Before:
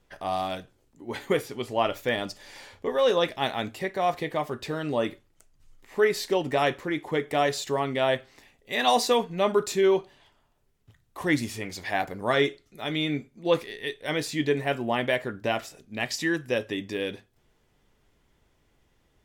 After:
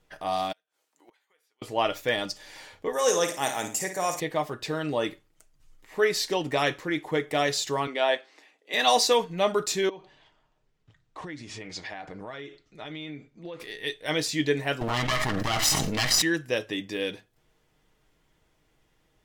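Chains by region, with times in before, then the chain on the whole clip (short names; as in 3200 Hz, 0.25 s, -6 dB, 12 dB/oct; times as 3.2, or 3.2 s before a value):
0.52–1.62 HPF 820 Hz + compressor 3:1, threshold -36 dBFS + flipped gate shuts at -41 dBFS, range -29 dB
2.93–4.2 HPF 160 Hz 6 dB/oct + resonant high shelf 5200 Hz +11.5 dB, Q 3 + flutter echo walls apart 9.3 m, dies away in 0.39 s
7.87–8.74 HPF 280 Hz 24 dB/oct + air absorption 52 m
9.89–13.6 Bessel low-pass 5400 Hz, order 6 + compressor 12:1, threshold -34 dBFS
14.81–16.22 minimum comb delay 1 ms + bell 940 Hz -3.5 dB 0.21 oct + fast leveller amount 100%
whole clip: low shelf 400 Hz -3 dB; comb 6.4 ms, depth 34%; dynamic EQ 5400 Hz, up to +6 dB, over -45 dBFS, Q 1.1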